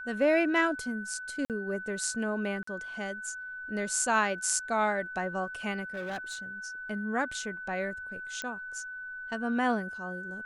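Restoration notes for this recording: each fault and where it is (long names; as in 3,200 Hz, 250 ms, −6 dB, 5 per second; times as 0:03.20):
whistle 1,500 Hz −38 dBFS
0:01.45–0:01.50: drop-out 48 ms
0:02.63–0:02.67: drop-out 44 ms
0:05.94–0:06.38: clipping −32 dBFS
0:08.42: click −21 dBFS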